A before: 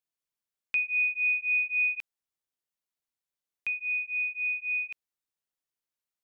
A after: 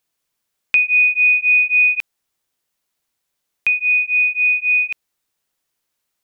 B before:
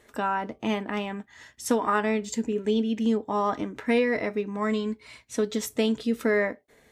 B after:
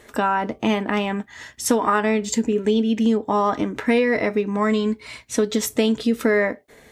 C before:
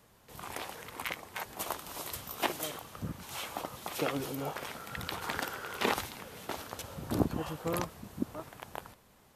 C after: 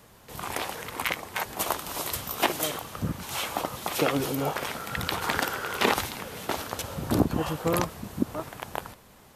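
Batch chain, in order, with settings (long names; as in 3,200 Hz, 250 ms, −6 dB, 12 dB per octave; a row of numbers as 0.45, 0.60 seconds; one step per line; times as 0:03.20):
downward compressor 2 to 1, threshold −28 dBFS
normalise the peak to −6 dBFS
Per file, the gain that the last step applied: +15.5, +9.5, +8.5 decibels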